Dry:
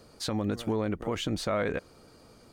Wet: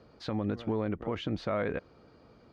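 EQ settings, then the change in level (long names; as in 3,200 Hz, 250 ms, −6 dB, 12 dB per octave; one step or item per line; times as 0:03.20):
high-pass filter 42 Hz
high-frequency loss of the air 240 metres
−1.5 dB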